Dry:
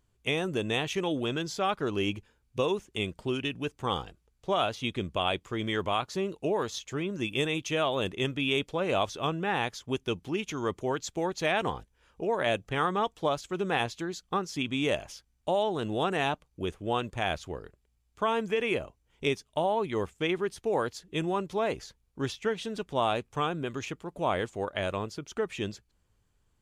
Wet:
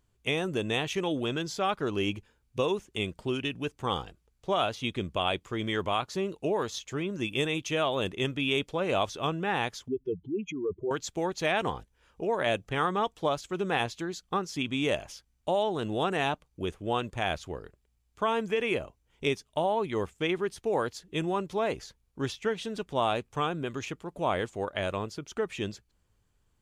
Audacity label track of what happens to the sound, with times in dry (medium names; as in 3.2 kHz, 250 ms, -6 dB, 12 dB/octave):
9.880000	10.910000	spectral contrast enhancement exponent 3.3